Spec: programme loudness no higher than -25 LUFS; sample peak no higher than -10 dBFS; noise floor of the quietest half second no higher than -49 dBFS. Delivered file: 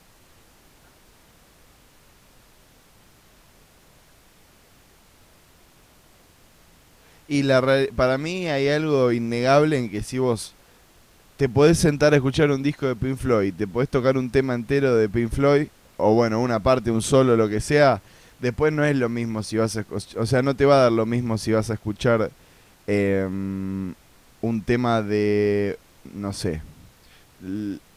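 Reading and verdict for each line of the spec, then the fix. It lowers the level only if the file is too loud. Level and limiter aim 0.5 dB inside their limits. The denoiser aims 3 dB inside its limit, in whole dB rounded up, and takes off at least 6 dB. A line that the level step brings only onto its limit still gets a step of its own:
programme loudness -21.5 LUFS: fail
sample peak -4.5 dBFS: fail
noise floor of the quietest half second -54 dBFS: pass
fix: trim -4 dB; peak limiter -10.5 dBFS

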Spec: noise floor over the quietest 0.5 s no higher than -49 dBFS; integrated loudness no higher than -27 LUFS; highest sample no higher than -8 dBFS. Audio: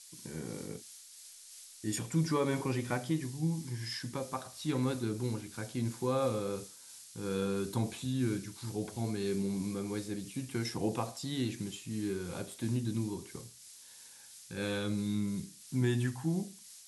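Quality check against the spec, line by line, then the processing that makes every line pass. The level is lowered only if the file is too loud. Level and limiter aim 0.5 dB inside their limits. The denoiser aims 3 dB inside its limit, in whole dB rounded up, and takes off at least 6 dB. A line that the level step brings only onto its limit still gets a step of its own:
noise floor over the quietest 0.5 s -54 dBFS: pass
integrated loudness -35.5 LUFS: pass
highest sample -19.5 dBFS: pass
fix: none needed

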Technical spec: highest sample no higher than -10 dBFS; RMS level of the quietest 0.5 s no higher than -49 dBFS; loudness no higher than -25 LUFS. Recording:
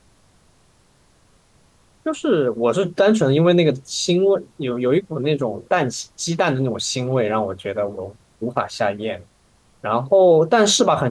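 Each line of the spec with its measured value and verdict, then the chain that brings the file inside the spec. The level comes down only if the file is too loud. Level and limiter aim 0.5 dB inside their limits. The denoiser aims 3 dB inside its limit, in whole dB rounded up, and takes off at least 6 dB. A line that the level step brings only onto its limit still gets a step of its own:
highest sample -5.5 dBFS: fail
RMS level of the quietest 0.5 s -57 dBFS: pass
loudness -19.0 LUFS: fail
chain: trim -6.5 dB

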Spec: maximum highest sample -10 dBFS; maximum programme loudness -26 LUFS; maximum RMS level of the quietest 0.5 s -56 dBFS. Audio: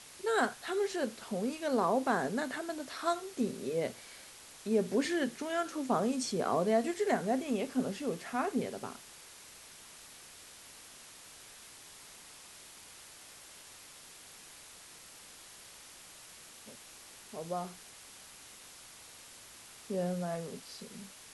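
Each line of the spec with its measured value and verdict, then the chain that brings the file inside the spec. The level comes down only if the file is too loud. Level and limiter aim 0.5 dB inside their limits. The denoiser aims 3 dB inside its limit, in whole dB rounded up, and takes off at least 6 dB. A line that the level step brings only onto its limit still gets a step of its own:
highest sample -16.0 dBFS: pass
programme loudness -34.0 LUFS: pass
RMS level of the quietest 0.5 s -53 dBFS: fail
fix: noise reduction 6 dB, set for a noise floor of -53 dBFS

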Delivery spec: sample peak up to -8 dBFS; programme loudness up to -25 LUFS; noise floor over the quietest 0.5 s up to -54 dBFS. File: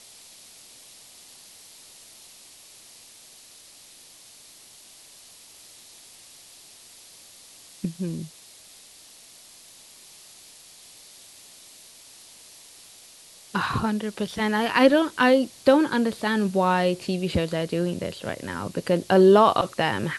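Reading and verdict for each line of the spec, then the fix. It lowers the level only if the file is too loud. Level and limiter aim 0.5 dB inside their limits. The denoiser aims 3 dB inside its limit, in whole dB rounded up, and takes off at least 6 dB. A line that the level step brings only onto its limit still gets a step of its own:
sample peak -5.0 dBFS: fail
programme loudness -22.5 LUFS: fail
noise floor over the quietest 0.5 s -50 dBFS: fail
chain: noise reduction 6 dB, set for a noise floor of -50 dBFS; trim -3 dB; peak limiter -8.5 dBFS

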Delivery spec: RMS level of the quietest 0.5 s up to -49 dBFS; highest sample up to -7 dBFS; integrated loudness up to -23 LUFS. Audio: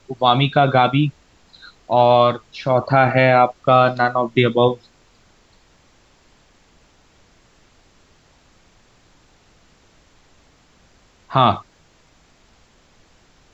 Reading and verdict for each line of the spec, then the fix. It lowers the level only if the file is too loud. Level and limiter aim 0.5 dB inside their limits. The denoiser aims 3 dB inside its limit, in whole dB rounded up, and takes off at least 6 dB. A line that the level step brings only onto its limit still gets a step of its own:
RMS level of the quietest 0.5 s -55 dBFS: pass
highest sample -2.0 dBFS: fail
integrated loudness -16.5 LUFS: fail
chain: trim -7 dB

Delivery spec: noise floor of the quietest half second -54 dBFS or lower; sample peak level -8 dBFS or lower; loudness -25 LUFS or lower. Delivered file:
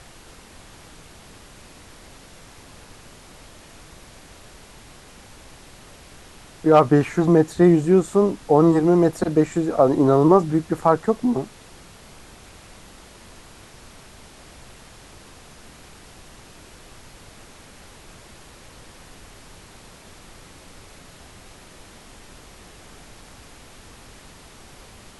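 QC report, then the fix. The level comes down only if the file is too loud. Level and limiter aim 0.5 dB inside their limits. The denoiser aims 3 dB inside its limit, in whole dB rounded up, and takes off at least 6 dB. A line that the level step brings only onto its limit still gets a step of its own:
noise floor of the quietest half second -45 dBFS: fail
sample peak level -3.5 dBFS: fail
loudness -18.0 LUFS: fail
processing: noise reduction 6 dB, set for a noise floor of -45 dBFS; trim -7.5 dB

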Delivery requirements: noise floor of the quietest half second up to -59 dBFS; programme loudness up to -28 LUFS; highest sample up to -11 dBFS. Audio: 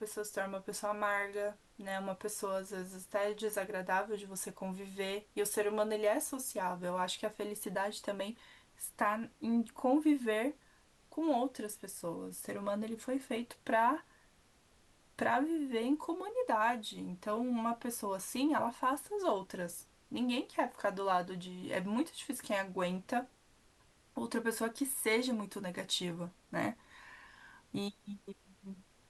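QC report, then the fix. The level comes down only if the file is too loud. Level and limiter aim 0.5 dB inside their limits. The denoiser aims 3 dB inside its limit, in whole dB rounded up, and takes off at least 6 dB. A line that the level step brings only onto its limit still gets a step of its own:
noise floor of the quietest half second -67 dBFS: pass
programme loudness -36.5 LUFS: pass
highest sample -19.5 dBFS: pass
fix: none needed

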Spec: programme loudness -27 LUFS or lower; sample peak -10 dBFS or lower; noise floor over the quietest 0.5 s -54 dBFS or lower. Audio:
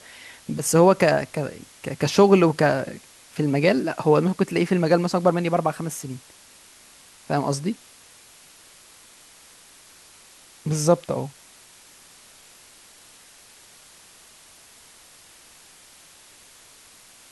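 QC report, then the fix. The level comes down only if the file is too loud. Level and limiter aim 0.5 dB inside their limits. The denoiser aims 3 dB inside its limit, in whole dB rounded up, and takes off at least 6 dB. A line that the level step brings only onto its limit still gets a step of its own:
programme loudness -21.5 LUFS: fail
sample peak -4.5 dBFS: fail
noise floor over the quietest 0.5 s -50 dBFS: fail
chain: trim -6 dB

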